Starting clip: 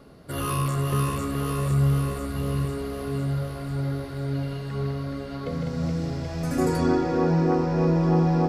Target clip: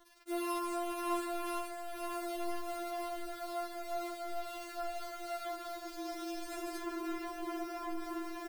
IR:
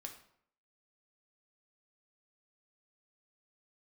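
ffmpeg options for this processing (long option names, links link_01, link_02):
-filter_complex "[0:a]alimiter=limit=-18dB:level=0:latency=1:release=25,highpass=frequency=120:width=0.5412,highpass=frequency=120:width=1.3066,asplit=2[link_01][link_02];[link_02]adelay=257,lowpass=frequency=970:poles=1,volume=-12dB,asplit=2[link_03][link_04];[link_04]adelay=257,lowpass=frequency=970:poles=1,volume=0.29,asplit=2[link_05][link_06];[link_06]adelay=257,lowpass=frequency=970:poles=1,volume=0.29[link_07];[link_01][link_03][link_05][link_07]amix=inputs=4:normalize=0,dynaudnorm=framelen=210:gausssize=7:maxgain=4dB,lowpass=frequency=12000:width=0.5412,lowpass=frequency=12000:width=1.3066,acrusher=bits=6:mix=0:aa=0.000001,bandreject=frequency=7200:width=26,asoftclip=type=tanh:threshold=-25dB,afftfilt=real='re*4*eq(mod(b,16),0)':imag='im*4*eq(mod(b,16),0)':win_size=2048:overlap=0.75,volume=-4dB"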